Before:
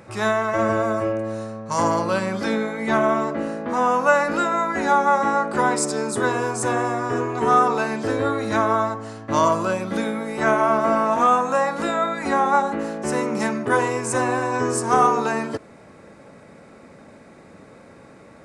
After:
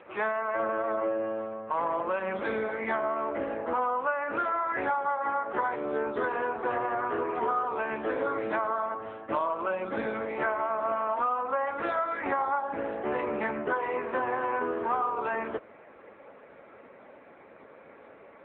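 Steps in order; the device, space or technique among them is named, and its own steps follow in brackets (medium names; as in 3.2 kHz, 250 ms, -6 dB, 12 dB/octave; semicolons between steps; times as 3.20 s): voicemail (band-pass 380–3000 Hz; compression 12:1, threshold -24 dBFS, peak gain reduction 13.5 dB; AMR-NB 6.7 kbps 8 kHz)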